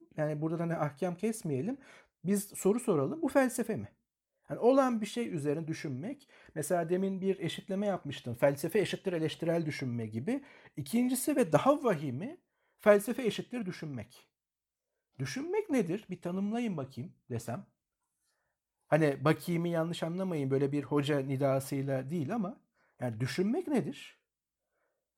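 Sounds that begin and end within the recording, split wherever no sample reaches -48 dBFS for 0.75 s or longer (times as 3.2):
15.19–17.61
18.91–24.11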